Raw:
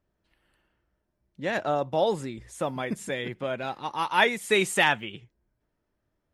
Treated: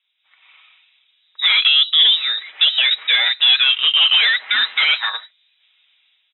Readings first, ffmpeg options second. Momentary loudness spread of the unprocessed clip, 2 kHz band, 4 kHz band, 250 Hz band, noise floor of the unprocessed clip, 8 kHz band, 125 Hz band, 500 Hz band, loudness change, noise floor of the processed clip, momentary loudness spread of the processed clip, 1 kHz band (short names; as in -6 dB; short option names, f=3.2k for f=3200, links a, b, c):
11 LU, +10.0 dB, +24.0 dB, under -20 dB, -79 dBFS, under -40 dB, under -30 dB, under -15 dB, +13.5 dB, -65 dBFS, 7 LU, -3.0 dB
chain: -filter_complex "[0:a]asplit=2[a][b];[b]acompressor=threshold=-30dB:ratio=6,volume=0dB[c];[a][c]amix=inputs=2:normalize=0,alimiter=limit=-17.5dB:level=0:latency=1:release=10,aecho=1:1:5.9:0.42,dynaudnorm=f=170:g=5:m=13dB,highpass=f=1.2k:p=1,aeval=exprs='0.944*sin(PI/2*4.47*val(0)/0.944)':c=same,lowpass=f=3.4k:t=q:w=0.5098,lowpass=f=3.4k:t=q:w=0.6013,lowpass=f=3.4k:t=q:w=0.9,lowpass=f=3.4k:t=q:w=2.563,afreqshift=-4000,aderivative"